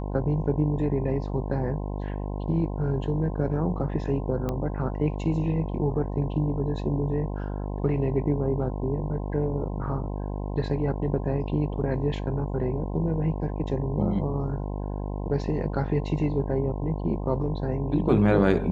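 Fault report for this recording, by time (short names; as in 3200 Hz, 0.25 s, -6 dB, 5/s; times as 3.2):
buzz 50 Hz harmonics 21 -31 dBFS
4.49 pop -17 dBFS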